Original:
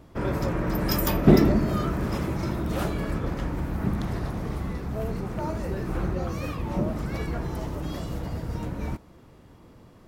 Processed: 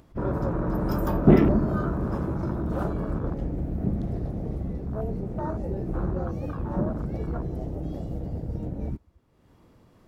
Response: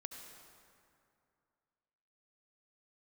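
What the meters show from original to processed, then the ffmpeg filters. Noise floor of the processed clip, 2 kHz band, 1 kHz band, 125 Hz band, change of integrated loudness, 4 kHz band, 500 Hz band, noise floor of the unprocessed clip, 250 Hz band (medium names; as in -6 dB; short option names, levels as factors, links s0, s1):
-59 dBFS, -6.0 dB, -1.5 dB, 0.0 dB, -0.5 dB, under -10 dB, 0.0 dB, -52 dBFS, 0.0 dB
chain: -af "afwtdn=0.0251,acompressor=mode=upward:threshold=0.00562:ratio=2.5"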